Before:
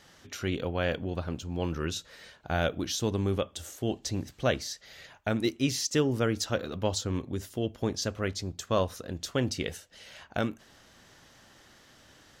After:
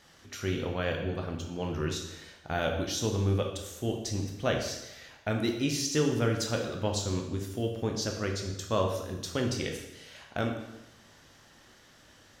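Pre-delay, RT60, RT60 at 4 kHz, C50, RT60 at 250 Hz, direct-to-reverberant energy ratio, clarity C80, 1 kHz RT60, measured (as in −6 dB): 6 ms, 1.0 s, 0.90 s, 5.5 dB, 0.95 s, 2.0 dB, 7.5 dB, 1.0 s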